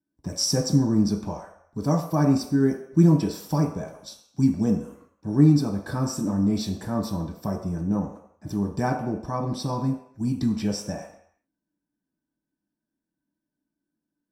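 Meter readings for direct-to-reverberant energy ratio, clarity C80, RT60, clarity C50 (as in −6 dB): −1.0 dB, 9.5 dB, non-exponential decay, 6.5 dB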